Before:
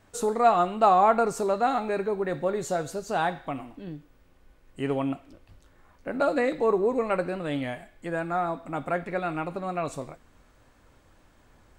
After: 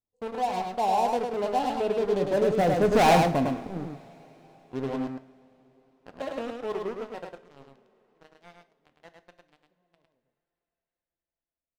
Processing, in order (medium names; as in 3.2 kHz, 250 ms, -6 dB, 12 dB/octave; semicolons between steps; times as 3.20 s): local Wiener filter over 25 samples; Doppler pass-by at 3.02 s, 16 m/s, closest 1.6 m; low-pass 7.9 kHz; in parallel at -6.5 dB: saturation -30.5 dBFS, distortion -7 dB; on the sum: FFT band-reject 1.1–2.4 kHz; waveshaping leveller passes 5; on a send: delay 105 ms -4 dB; on the sum: two-slope reverb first 0.4 s, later 4.8 s, from -21 dB, DRR 11 dB